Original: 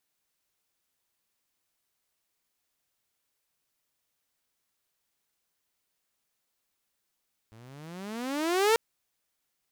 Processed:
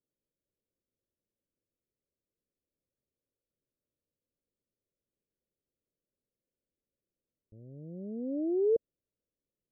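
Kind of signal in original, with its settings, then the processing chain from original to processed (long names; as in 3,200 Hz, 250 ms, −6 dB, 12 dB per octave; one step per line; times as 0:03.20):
pitch glide with a swell saw, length 1.24 s, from 107 Hz, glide +25.5 semitones, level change +31 dB, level −16.5 dB
Butterworth low-pass 590 Hz 72 dB per octave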